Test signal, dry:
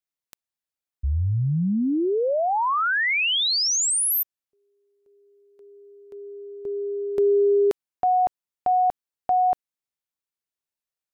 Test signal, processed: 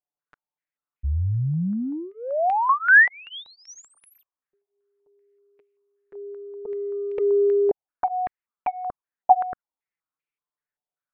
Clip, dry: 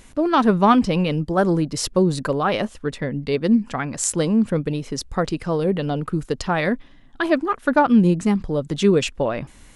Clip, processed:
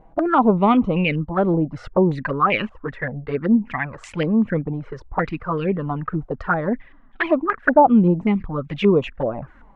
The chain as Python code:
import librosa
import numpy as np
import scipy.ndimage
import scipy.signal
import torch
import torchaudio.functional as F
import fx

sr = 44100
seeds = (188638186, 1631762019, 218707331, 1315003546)

y = fx.env_flanger(x, sr, rest_ms=6.8, full_db=-15.0)
y = fx.filter_held_lowpass(y, sr, hz=5.2, low_hz=770.0, high_hz=2400.0)